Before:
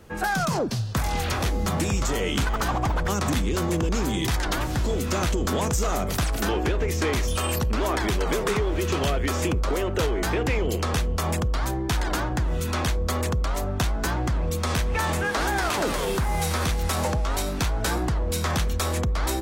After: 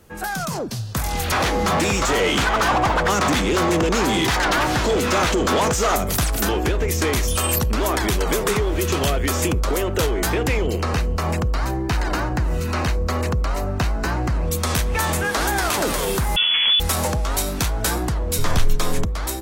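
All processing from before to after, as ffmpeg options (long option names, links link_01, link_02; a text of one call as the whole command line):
ffmpeg -i in.wav -filter_complex "[0:a]asettb=1/sr,asplit=3[link_01][link_02][link_03];[link_01]atrim=end=1.324[link_04];[link_02]atrim=start=1.32:end=5.96,asetpts=PTS-STARTPTS,afade=type=in:duration=0.004:curve=qsin,afade=type=out:start_time=4.636:duration=0.004:curve=qsin,asplit=2[link_05][link_06];[link_06]highpass=frequency=720:poles=1,volume=21dB,asoftclip=type=tanh:threshold=-14.5dB[link_07];[link_05][link_07]amix=inputs=2:normalize=0,lowpass=frequency=2600:poles=1,volume=-6dB,highshelf=frequency=11000:gain=-8.5[link_08];[link_03]atrim=start=5.956[link_09];[link_04][link_08]acrossfade=duration=0.004:curve1=hsin:curve2=qsin[link_10];[link_10][link_09]acrossfade=duration=0.004:curve1=qsin:curve2=hsin,asettb=1/sr,asplit=3[link_11][link_12][link_13];[link_11]atrim=end=10.674[link_14];[link_12]atrim=start=10.67:end=14.45,asetpts=PTS-STARTPTS,afade=type=in:duration=0.004:curve=qsin,afade=type=out:start_time=3.776:duration=0.004:curve=qsin,acrossover=split=4900[link_15][link_16];[link_16]acompressor=threshold=-50dB:ratio=4:attack=1:release=60[link_17];[link_15][link_17]amix=inputs=2:normalize=0,bandreject=frequency=3400:width=5.5[link_18];[link_13]atrim=start=14.446[link_19];[link_14][link_18]acrossfade=duration=0.004:curve1=hsin:curve2=qsin[link_20];[link_20][link_19]acrossfade=duration=0.004:curve1=qsin:curve2=hsin,asettb=1/sr,asplit=3[link_21][link_22][link_23];[link_21]atrim=end=16.364[link_24];[link_22]atrim=start=16.36:end=16.8,asetpts=PTS-STARTPTS,afade=type=in:duration=0.004:curve=qsin,afade=type=out:start_time=0.436:duration=0.004:curve=qsin,tiltshelf=frequency=1400:gain=3.5,lowpass=frequency=3000:width_type=q:width=0.5098,lowpass=frequency=3000:width_type=q:width=0.6013,lowpass=frequency=3000:width_type=q:width=0.9,lowpass=frequency=3000:width_type=q:width=2.563,afreqshift=-3500[link_25];[link_23]atrim=start=16.796[link_26];[link_24][link_25]acrossfade=duration=0.004:curve1=hsin:curve2=qsin[link_27];[link_27][link_26]acrossfade=duration=0.004:curve1=qsin:curve2=hsin,asettb=1/sr,asplit=3[link_28][link_29][link_30];[link_28]atrim=end=18.384[link_31];[link_29]atrim=start=18.38:end=19.05,asetpts=PTS-STARTPTS,afade=type=in:duration=0.004:curve=qsin,afade=type=out:start_time=0.666:duration=0.004:curve=qsin,acrossover=split=6100[link_32][link_33];[link_33]acompressor=threshold=-40dB:ratio=4:attack=1:release=60[link_34];[link_32][link_34]amix=inputs=2:normalize=0,lowshelf=frequency=220:gain=11,afreqshift=-70[link_35];[link_30]atrim=start=19.046[link_36];[link_31][link_35]acrossfade=duration=0.004:curve1=hsin:curve2=qsin[link_37];[link_37][link_36]acrossfade=duration=0.004:curve1=qsin:curve2=hsin,equalizer=frequency=14000:width_type=o:width=1.4:gain=8.5,dynaudnorm=framelen=700:gausssize=3:maxgain=6dB,volume=-2.5dB" out.wav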